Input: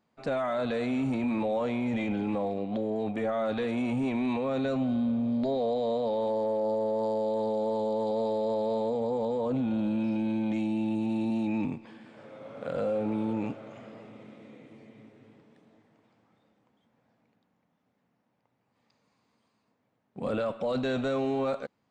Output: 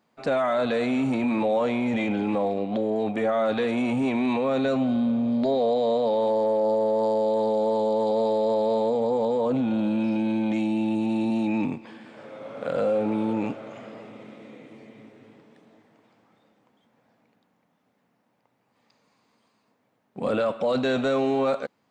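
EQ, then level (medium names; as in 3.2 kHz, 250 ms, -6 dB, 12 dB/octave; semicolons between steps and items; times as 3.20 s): bass shelf 110 Hz -12 dB; +6.5 dB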